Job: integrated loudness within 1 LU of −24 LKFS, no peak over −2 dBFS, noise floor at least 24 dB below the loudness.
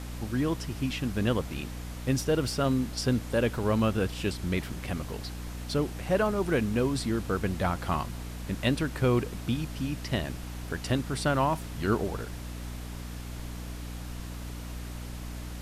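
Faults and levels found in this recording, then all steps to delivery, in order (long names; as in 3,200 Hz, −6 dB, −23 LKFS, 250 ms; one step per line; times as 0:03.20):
mains hum 60 Hz; hum harmonics up to 300 Hz; level of the hum −36 dBFS; background noise floor −39 dBFS; target noise floor −55 dBFS; integrated loudness −30.5 LKFS; sample peak −13.0 dBFS; target loudness −24.0 LKFS
→ mains-hum notches 60/120/180/240/300 Hz
noise reduction from a noise print 16 dB
level +6.5 dB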